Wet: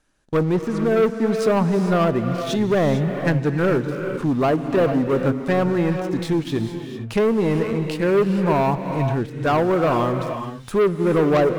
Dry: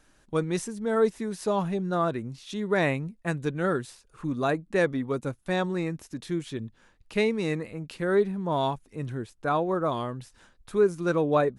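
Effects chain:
treble cut that deepens with the level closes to 1,100 Hz, closed at −22 dBFS
leveller curve on the samples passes 3
reverb whose tail is shaped and stops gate 480 ms rising, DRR 6 dB

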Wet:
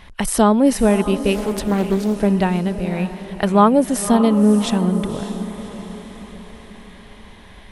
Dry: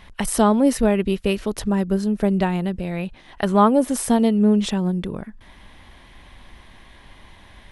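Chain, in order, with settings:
feedback delay with all-pass diffusion 570 ms, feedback 49%, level −11 dB
0:01.34–0:02.16: highs frequency-modulated by the lows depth 0.48 ms
level +2.5 dB

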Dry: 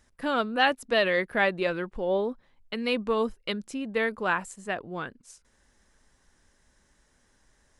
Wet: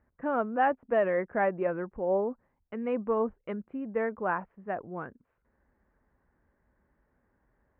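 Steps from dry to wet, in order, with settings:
Bessel low-pass filter 1,200 Hz, order 8
dynamic equaliser 740 Hz, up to +4 dB, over −38 dBFS, Q 1.4
high-pass filter 41 Hz
level −2.5 dB

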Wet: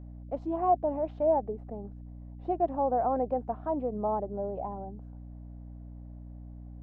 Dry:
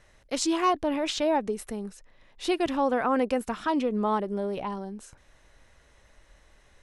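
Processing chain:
low-pass with resonance 720 Hz, resonance Q 4.9
mains hum 60 Hz, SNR 12 dB
level −9 dB

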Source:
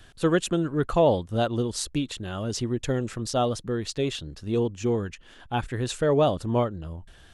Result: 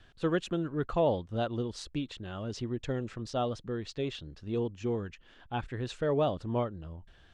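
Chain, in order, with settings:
low-pass filter 4,500 Hz 12 dB per octave
level −7 dB

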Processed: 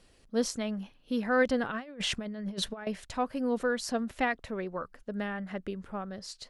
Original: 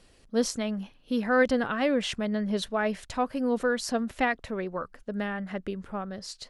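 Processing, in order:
0:01.70–0:02.87: compressor whose output falls as the input rises −32 dBFS, ratio −0.5
level −3 dB

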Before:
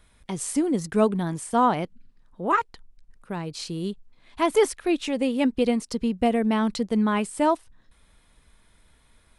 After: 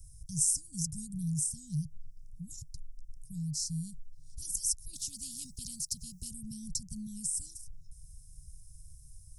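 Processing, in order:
Chebyshev band-stop filter 150–5,400 Hz, order 5
in parallel at 0 dB: downward compressor, threshold −47 dBFS, peak gain reduction 17 dB
0:04.93–0:06.31: on the sum: every bin compressed towards the loudest bin 2 to 1
level +3.5 dB

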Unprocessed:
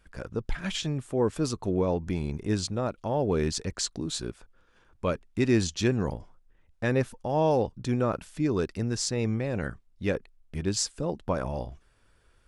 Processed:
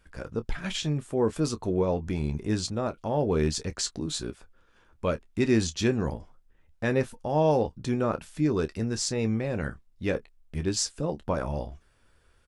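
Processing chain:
ambience of single reflections 13 ms −11.5 dB, 27 ms −14 dB

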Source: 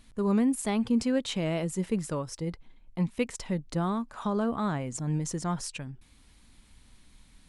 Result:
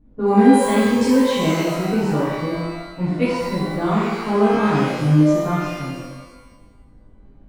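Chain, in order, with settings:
low-pass that shuts in the quiet parts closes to 470 Hz, open at −22.5 dBFS
reverb with rising layers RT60 1.1 s, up +12 semitones, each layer −8 dB, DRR −12 dB
level −2.5 dB

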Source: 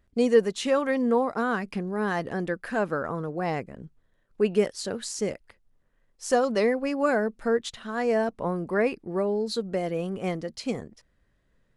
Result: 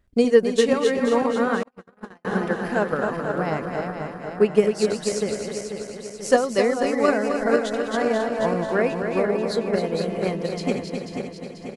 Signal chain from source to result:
feedback delay that plays each chunk backwards 244 ms, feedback 74%, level −5 dB
transient designer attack +7 dB, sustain −1 dB
on a send: single-tap delay 262 ms −7.5 dB
0:01.63–0:02.25: on the sum: noise gate −19 dBFS, range −49 dB

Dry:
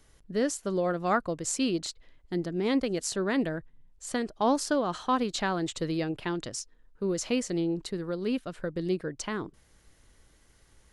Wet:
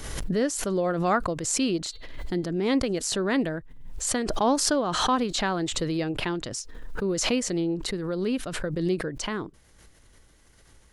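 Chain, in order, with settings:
0:01.88–0:02.50: hum removal 401.7 Hz, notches 11
background raised ahead of every attack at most 40 dB per second
level +2 dB

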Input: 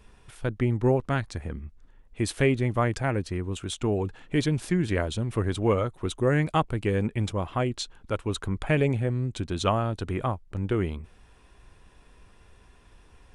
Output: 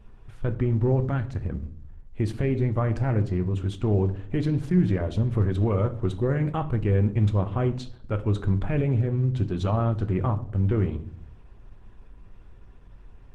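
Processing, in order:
brickwall limiter −18.5 dBFS, peak gain reduction 7 dB
low-pass filter 1,600 Hz 6 dB per octave
low-shelf EQ 180 Hz +7 dB
on a send at −8 dB: convolution reverb RT60 0.60 s, pre-delay 5 ms
on the sum: Opus 16 kbit/s 48,000 Hz

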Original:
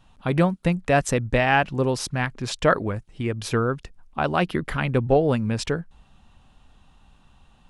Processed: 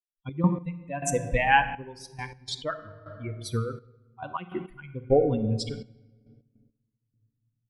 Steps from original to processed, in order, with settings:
spectral dynamics exaggerated over time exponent 3
rectangular room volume 1,500 cubic metres, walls mixed, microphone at 0.65 metres
gate pattern ".x.x...xxxxx.." 103 BPM −12 dB
level +2.5 dB

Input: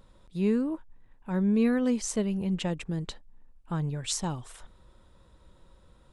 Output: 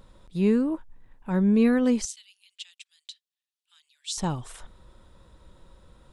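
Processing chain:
0:02.05–0:04.18: four-pole ladder high-pass 2,900 Hz, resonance 40%
level +4 dB

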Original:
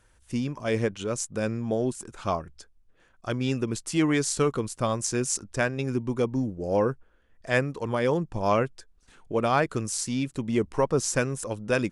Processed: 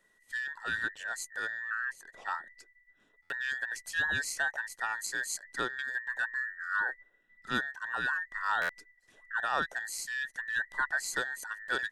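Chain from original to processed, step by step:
frequency inversion band by band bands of 2,000 Hz
0:01.70–0:02.31: high-shelf EQ 4,900 Hz −9 dB
buffer that repeats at 0:03.22/0:08.61, samples 512, times 6
level −8 dB

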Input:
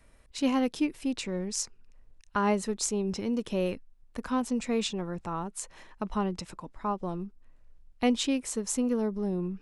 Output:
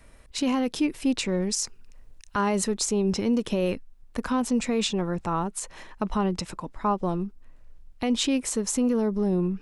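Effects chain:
0:01.42–0:02.64: high-shelf EQ 4,000 Hz +6 dB
brickwall limiter −23 dBFS, peak gain reduction 11 dB
level +7 dB

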